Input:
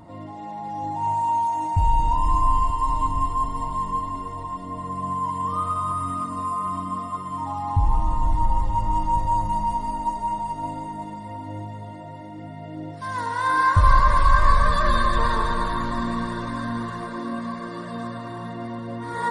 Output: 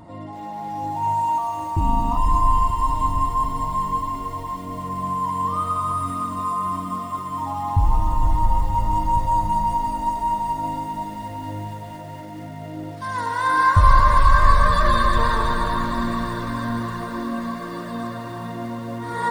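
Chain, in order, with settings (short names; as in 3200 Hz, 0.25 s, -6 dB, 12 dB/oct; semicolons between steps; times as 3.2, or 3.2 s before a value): 1.38–2.17 AM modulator 230 Hz, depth 50%; lo-fi delay 0.233 s, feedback 80%, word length 7-bit, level -14 dB; gain +2 dB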